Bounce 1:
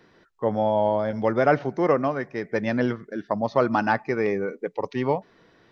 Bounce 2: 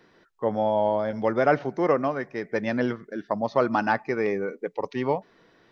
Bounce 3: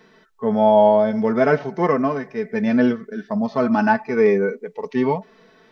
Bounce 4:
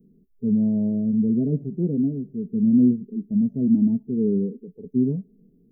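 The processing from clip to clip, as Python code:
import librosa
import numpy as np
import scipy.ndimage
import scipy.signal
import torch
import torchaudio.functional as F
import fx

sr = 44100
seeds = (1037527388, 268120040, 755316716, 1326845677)

y1 = fx.peak_eq(x, sr, hz=74.0, db=-5.0, octaves=2.0)
y1 = F.gain(torch.from_numpy(y1), -1.0).numpy()
y2 = y1 + 0.53 * np.pad(y1, (int(4.6 * sr / 1000.0), 0))[:len(y1)]
y2 = fx.hpss(y2, sr, part='percussive', gain_db=-12)
y2 = F.gain(torch.from_numpy(y2), 8.0).numpy()
y3 = scipy.signal.sosfilt(scipy.signal.cheby2(4, 70, [1100.0, 4300.0], 'bandstop', fs=sr, output='sos'), y2)
y3 = fx.low_shelf(y3, sr, hz=320.0, db=8.5)
y3 = F.gain(torch.from_numpy(y3), -3.5).numpy()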